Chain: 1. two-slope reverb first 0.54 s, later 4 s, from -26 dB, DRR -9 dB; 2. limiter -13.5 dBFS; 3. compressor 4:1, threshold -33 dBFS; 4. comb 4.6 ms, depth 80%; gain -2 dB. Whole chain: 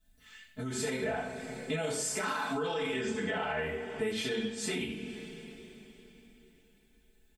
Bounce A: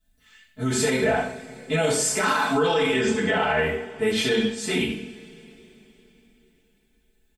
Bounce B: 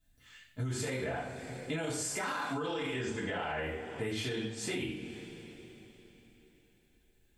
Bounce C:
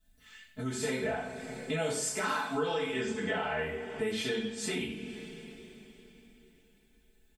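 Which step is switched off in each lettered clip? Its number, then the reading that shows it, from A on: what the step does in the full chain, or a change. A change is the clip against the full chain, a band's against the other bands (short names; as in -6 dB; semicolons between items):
3, mean gain reduction 7.5 dB; 4, 125 Hz band +6.0 dB; 2, mean gain reduction 2.0 dB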